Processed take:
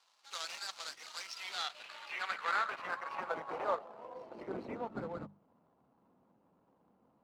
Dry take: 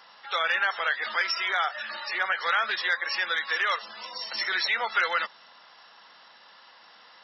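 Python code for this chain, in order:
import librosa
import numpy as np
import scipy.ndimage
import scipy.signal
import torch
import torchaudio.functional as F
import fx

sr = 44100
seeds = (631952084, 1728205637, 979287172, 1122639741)

p1 = scipy.signal.medfilt(x, 25)
p2 = fx.quant_dither(p1, sr, seeds[0], bits=8, dither='none')
p3 = p1 + F.gain(torch.from_numpy(p2), -10.0).numpy()
p4 = fx.hum_notches(p3, sr, base_hz=50, count=4)
p5 = fx.filter_sweep_bandpass(p4, sr, from_hz=5200.0, to_hz=200.0, start_s=1.28, end_s=5.11, q=1.5)
y = F.gain(torch.from_numpy(p5), 1.5).numpy()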